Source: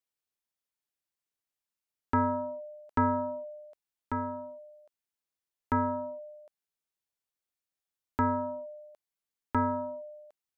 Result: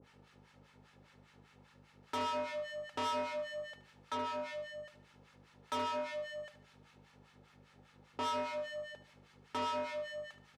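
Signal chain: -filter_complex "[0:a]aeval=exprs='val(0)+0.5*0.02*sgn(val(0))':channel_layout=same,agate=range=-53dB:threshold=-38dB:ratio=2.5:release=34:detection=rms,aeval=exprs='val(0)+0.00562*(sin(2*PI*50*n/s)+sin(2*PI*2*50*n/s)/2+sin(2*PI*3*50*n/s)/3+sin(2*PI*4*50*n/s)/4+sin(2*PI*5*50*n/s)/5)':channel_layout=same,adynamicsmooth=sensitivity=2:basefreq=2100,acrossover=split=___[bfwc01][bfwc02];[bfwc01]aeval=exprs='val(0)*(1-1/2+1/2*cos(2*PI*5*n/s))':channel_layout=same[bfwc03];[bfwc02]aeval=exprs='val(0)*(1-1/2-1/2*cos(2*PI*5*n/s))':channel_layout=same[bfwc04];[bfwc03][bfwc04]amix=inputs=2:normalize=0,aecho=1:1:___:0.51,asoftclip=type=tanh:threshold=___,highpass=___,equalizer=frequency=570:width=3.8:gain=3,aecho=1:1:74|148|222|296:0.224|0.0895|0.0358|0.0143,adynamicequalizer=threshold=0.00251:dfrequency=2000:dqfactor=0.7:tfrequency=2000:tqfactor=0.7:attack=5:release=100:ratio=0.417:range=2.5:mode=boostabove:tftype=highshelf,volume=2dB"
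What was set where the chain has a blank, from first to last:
940, 2.3, -35dB, 240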